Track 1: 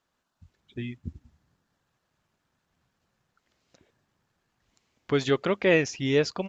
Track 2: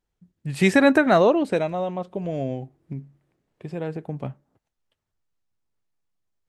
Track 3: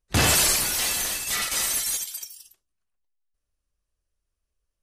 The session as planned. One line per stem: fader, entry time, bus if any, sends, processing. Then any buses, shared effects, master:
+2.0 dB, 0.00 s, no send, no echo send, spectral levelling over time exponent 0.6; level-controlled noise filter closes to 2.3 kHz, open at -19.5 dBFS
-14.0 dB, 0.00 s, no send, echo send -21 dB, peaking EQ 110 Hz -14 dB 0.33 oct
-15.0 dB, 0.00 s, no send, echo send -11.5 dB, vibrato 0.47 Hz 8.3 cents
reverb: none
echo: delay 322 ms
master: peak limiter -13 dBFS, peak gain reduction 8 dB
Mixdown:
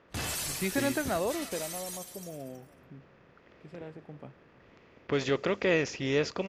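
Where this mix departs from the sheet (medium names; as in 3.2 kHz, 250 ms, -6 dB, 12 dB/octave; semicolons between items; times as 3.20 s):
stem 1 +2.0 dB -> -6.5 dB; stem 3: missing vibrato 0.47 Hz 8.3 cents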